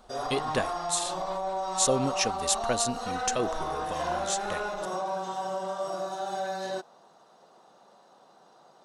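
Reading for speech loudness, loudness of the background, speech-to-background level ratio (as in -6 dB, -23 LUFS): -30.5 LUFS, -32.5 LUFS, 2.0 dB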